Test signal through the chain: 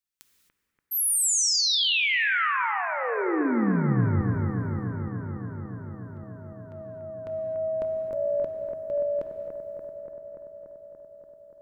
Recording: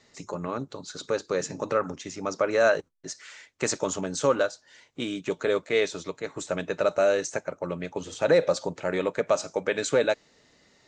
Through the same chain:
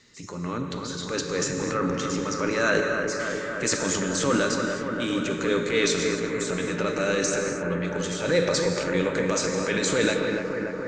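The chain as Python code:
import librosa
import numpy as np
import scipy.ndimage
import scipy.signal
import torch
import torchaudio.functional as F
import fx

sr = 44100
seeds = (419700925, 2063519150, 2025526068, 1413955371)

y = fx.peak_eq(x, sr, hz=700.0, db=-13.5, octaves=0.88)
y = fx.transient(y, sr, attack_db=-5, sustain_db=8)
y = fx.echo_bbd(y, sr, ms=289, stages=4096, feedback_pct=78, wet_db=-6.0)
y = fx.rev_gated(y, sr, seeds[0], gate_ms=290, shape='flat', drr_db=5.0)
y = F.gain(torch.from_numpy(y), 4.0).numpy()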